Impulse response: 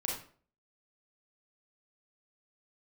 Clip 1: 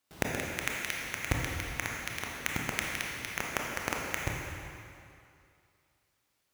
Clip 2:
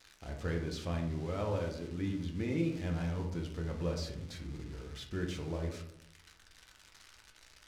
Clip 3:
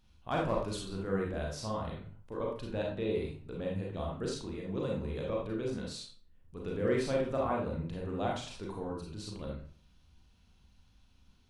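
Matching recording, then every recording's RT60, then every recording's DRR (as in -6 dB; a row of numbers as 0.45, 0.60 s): 3; 2.5, 0.80, 0.45 s; -1.5, 1.5, -2.5 dB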